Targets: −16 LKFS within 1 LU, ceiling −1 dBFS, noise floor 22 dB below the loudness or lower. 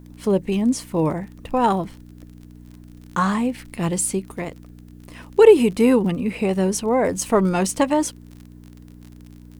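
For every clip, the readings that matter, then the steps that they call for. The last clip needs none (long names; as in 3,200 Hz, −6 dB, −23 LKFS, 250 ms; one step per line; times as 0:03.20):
crackle rate 36 per second; mains hum 60 Hz; hum harmonics up to 300 Hz; level of the hum −42 dBFS; integrated loudness −20.0 LKFS; sample peak −2.0 dBFS; target loudness −16.0 LKFS
→ click removal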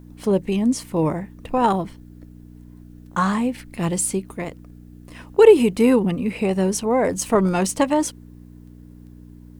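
crackle rate 0.94 per second; mains hum 60 Hz; hum harmonics up to 300 Hz; level of the hum −42 dBFS
→ hum removal 60 Hz, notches 5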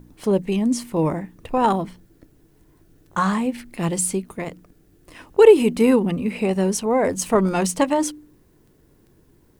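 mains hum none found; integrated loudness −20.0 LKFS; sample peak −2.0 dBFS; target loudness −16.0 LKFS
→ level +4 dB
brickwall limiter −1 dBFS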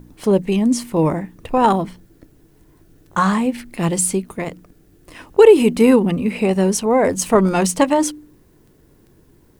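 integrated loudness −16.5 LKFS; sample peak −1.0 dBFS; background noise floor −53 dBFS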